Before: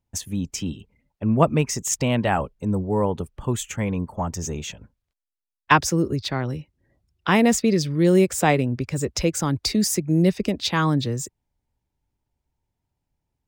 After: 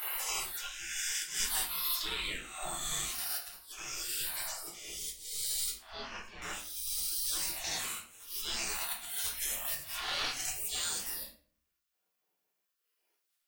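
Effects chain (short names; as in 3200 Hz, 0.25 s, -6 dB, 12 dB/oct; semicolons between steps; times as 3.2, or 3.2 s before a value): spectral swells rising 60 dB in 2.16 s; reverb removal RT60 1.7 s; spectral gate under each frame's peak -30 dB weak; high shelf 9200 Hz +4.5 dB; auto swell 0.616 s; compressor 12:1, threshold -43 dBFS, peak gain reduction 17 dB; 1.34–1.98 sample leveller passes 1; 5.75–6.42 air absorption 250 m; 7.81–8.44 dip -20 dB, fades 0.25 s; shoebox room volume 45 m³, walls mixed, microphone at 0.87 m; gain +8 dB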